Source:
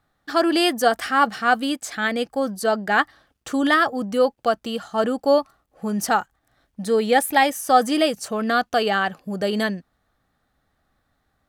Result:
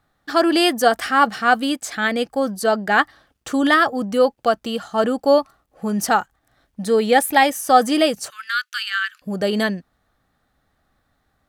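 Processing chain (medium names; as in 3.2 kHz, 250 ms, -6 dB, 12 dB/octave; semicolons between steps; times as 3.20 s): 8.30–9.22 s: elliptic high-pass 1.4 kHz, stop band 50 dB; trim +2.5 dB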